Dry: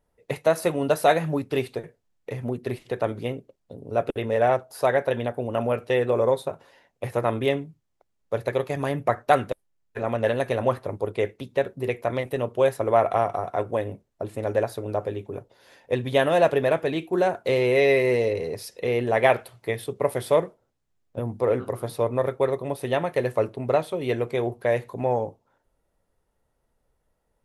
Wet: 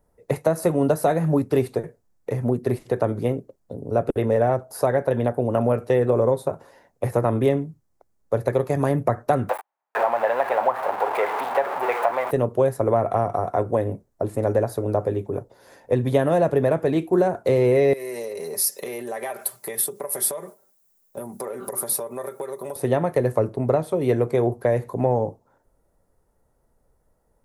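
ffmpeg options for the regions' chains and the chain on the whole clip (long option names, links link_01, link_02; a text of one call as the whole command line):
ffmpeg -i in.wav -filter_complex "[0:a]asettb=1/sr,asplit=3[link_01][link_02][link_03];[link_01]atrim=end=9.494[link_04];[link_02]atrim=start=9.49:end=12.31,asetpts=PTS-STARTPTS,afade=type=in:duration=0.004:curve=qsin,afade=type=out:start_time=2.816:duration=0.004:curve=qsin,aeval=exprs='val(0)+0.5*0.0596*sgn(val(0))':channel_layout=same,highpass=frequency=830:width_type=q:width=3.5,highshelf=frequency=4000:width_type=q:width=1.5:gain=-13[link_05];[link_03]atrim=start=12.306[link_06];[link_04][link_05]acrossfade=duration=0.004:curve1=hsin:curve2=qsin[link_07];[link_07][link_06]acrossfade=duration=0.004:curve1=qsin:curve2=hsin,asettb=1/sr,asplit=3[link_08][link_09][link_10];[link_08]atrim=end=17.934[link_11];[link_09]atrim=start=17.93:end=22.76,asetpts=PTS-STARTPTS,afade=type=in:duration=0.004:curve=qsin,afade=type=out:start_time=4.826:duration=0.004:curve=qsin,aecho=1:1:5.1:0.6,atrim=end_sample=213003,acompressor=threshold=-30dB:ratio=16:attack=3.2:release=140:knee=1:detection=peak,aemphasis=mode=production:type=riaa[link_12];[link_10]atrim=start=22.756[link_13];[link_11][link_12]acrossfade=duration=0.004:curve1=hsin:curve2=qsin[link_14];[link_14][link_13]acrossfade=duration=0.004:curve1=qsin:curve2=hsin,equalizer=frequency=3000:width=1:gain=-12.5,acrossover=split=290[link_15][link_16];[link_16]acompressor=threshold=-25dB:ratio=6[link_17];[link_15][link_17]amix=inputs=2:normalize=0,volume=7dB" out.wav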